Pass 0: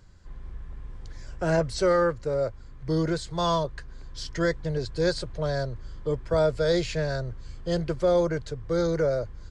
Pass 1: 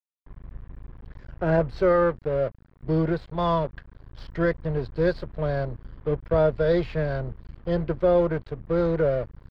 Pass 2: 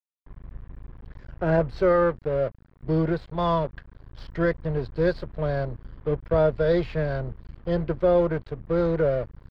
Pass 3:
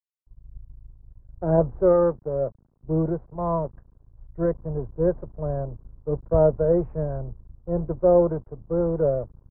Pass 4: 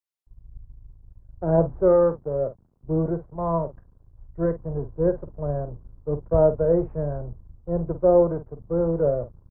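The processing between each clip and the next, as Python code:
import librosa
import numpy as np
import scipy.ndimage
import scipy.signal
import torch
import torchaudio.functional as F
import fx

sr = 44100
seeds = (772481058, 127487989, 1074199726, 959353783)

y1 = np.sign(x) * np.maximum(np.abs(x) - 10.0 ** (-40.0 / 20.0), 0.0)
y1 = fx.air_absorb(y1, sr, metres=400.0)
y1 = y1 * 10.0 ** (4.0 / 20.0)
y2 = y1
y3 = scipy.signal.sosfilt(scipy.signal.butter(4, 1000.0, 'lowpass', fs=sr, output='sos'), y2)
y3 = fx.band_widen(y3, sr, depth_pct=70)
y4 = fx.doubler(y3, sr, ms=48.0, db=-12)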